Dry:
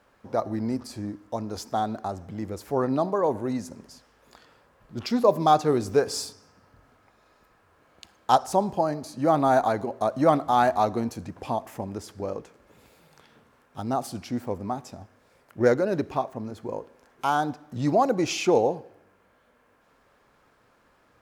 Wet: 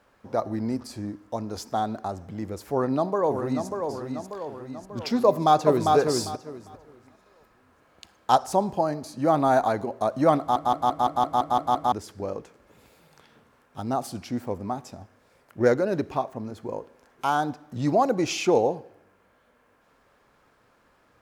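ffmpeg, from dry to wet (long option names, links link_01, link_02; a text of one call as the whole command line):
ffmpeg -i in.wav -filter_complex "[0:a]asplit=2[link_01][link_02];[link_02]afade=type=in:start_time=2.71:duration=0.01,afade=type=out:start_time=3.67:duration=0.01,aecho=0:1:590|1180|1770|2360|2950|3540|4130:0.501187|0.275653|0.151609|0.083385|0.0458618|0.025224|0.0138732[link_03];[link_01][link_03]amix=inputs=2:normalize=0,asplit=2[link_04][link_05];[link_05]afade=type=in:start_time=5.26:duration=0.01,afade=type=out:start_time=5.95:duration=0.01,aecho=0:1:400|800|1200:0.707946|0.141589|0.0283178[link_06];[link_04][link_06]amix=inputs=2:normalize=0,asplit=10[link_07][link_08][link_09][link_10][link_11][link_12][link_13][link_14][link_15][link_16];[link_07]atrim=end=10.562[link_17];[link_08]atrim=start=10.388:end=10.562[link_18];[link_09]atrim=start=10.388:end=10.562[link_19];[link_10]atrim=start=10.388:end=10.562[link_20];[link_11]atrim=start=10.388:end=10.562[link_21];[link_12]atrim=start=10.388:end=10.562[link_22];[link_13]atrim=start=10.388:end=10.562[link_23];[link_14]atrim=start=10.388:end=10.562[link_24];[link_15]atrim=start=10.388:end=10.562[link_25];[link_16]atrim=start=11.918[link_26];[link_17][link_18]acrossfade=duration=0.004:curve1=hsin:curve2=hsin[link_27];[link_27][link_19]acrossfade=duration=0.004:curve1=hsin:curve2=hsin[link_28];[link_28][link_20]acrossfade=duration=0.004:curve1=hsin:curve2=hsin[link_29];[link_29][link_21]acrossfade=duration=0.004:curve1=hsin:curve2=hsin[link_30];[link_30][link_22]acrossfade=duration=0.004:curve1=hsin:curve2=hsin[link_31];[link_31][link_23]acrossfade=duration=0.004:curve1=hsin:curve2=hsin[link_32];[link_32][link_24]acrossfade=duration=0.004:curve1=hsin:curve2=hsin[link_33];[link_33][link_25]acrossfade=duration=0.004:curve1=hsin:curve2=hsin[link_34];[link_34][link_26]acrossfade=duration=0.004:curve1=hsin:curve2=hsin" out.wav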